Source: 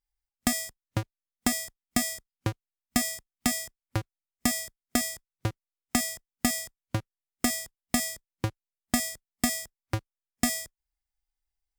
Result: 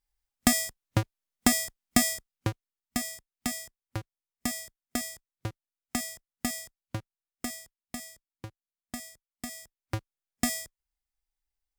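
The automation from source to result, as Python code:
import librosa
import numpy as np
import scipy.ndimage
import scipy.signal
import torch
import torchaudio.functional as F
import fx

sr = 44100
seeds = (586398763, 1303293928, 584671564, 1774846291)

y = fx.gain(x, sr, db=fx.line((2.07, 3.5), (3.0, -5.5), (6.99, -5.5), (7.99, -13.0), (9.45, -13.0), (9.98, -2.0)))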